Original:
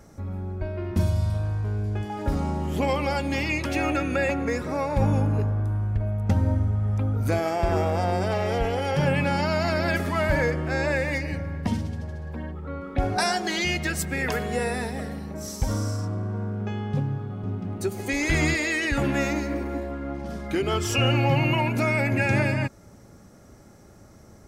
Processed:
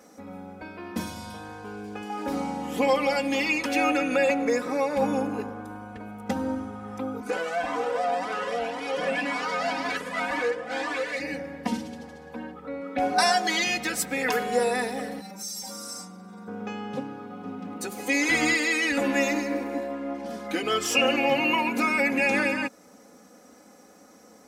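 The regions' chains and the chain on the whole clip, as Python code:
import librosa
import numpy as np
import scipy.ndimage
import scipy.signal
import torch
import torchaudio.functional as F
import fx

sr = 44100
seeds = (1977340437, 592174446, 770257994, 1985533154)

y = fx.chain(x, sr, fx.lower_of_two(delay_ms=4.1),
    fx.lowpass(hz=9900.0, slope=12),
    fx.comb_cascade(direction='rising', hz=1.9), at=(7.2, 11.2))
y = fx.chain(y, sr, fx.high_shelf(hz=2500.0, db=8.0),
    fx.stiff_resonator(f0_hz=190.0, decay_s=0.24, stiffness=0.002),
    fx.env_flatten(amount_pct=100), at=(15.21, 16.48))
y = scipy.signal.sosfilt(scipy.signal.butter(2, 300.0, 'highpass', fs=sr, output='sos'), y)
y = y + 0.89 * np.pad(y, (int(4.0 * sr / 1000.0), 0))[:len(y)]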